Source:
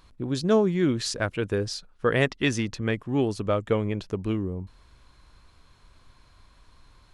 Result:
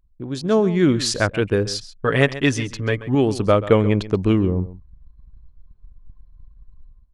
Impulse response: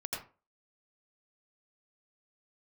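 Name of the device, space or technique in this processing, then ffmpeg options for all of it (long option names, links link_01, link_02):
voice memo with heavy noise removal: -filter_complex "[0:a]asettb=1/sr,asplit=3[link_01][link_02][link_03];[link_01]atrim=end=1.744[link_04];[link_02]atrim=start=1.74:end=3.15,asetpts=PTS-STARTPTS,afade=type=in:duration=0.004:curve=qsin,afade=type=out:start_time=1.406:duration=0.004:curve=qsin,aecho=1:1:7.1:0.67,atrim=end_sample=62181[link_05];[link_03]atrim=start=3.146[link_06];[link_04][link_05]acrossfade=duration=0.004:curve1=hsin:curve2=qsin[link_07];[link_07][link_06]acrossfade=duration=0.004:curve1=qsin:curve2=hsin,anlmdn=0.1,dynaudnorm=framelen=430:gausssize=3:maxgain=14.5dB,aecho=1:1:133:0.168,volume=-1dB"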